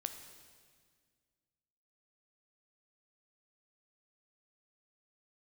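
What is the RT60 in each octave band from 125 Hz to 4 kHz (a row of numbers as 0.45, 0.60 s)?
2.3, 2.3, 1.9, 1.7, 1.7, 1.7 s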